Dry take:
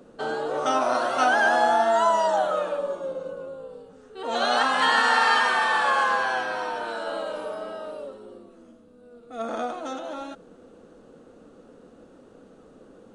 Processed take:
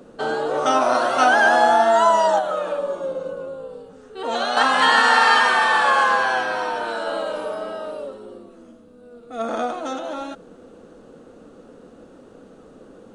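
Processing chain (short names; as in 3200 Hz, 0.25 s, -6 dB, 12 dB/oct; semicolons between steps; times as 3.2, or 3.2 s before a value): 2.38–4.57 compressor 5:1, threshold -25 dBFS, peak gain reduction 6.5 dB; gain +5 dB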